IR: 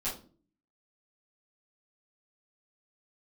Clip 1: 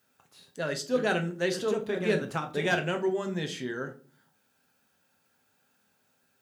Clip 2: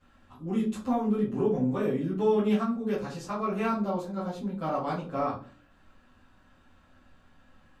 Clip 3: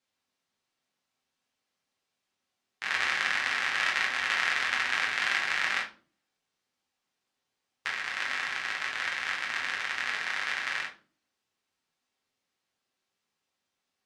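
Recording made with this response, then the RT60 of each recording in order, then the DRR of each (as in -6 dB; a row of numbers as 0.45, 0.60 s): 2; 0.40, 0.40, 0.40 s; 4.0, -11.5, -2.5 dB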